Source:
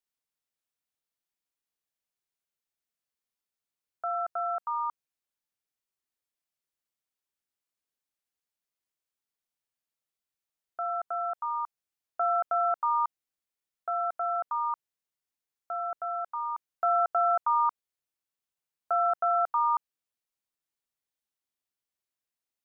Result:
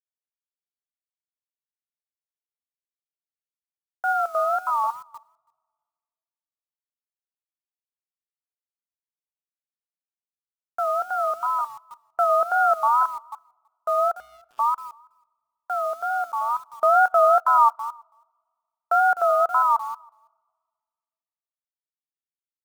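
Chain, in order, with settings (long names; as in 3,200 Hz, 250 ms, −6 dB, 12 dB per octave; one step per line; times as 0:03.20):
delay that plays each chunk backwards 157 ms, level −11 dB
in parallel at −1 dB: brickwall limiter −25 dBFS, peak gain reduction 9 dB
0:14.13–0:14.59: on the sum: gate with flip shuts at −27 dBFS, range −29 dB
bit reduction 8 bits
tape wow and flutter 130 cents
single-tap delay 328 ms −21 dB
on a send at −23 dB: convolution reverb RT60 1.9 s, pre-delay 3 ms
on the sum: expander for the loud parts 1.5 to 1, over −47 dBFS
level +5.5 dB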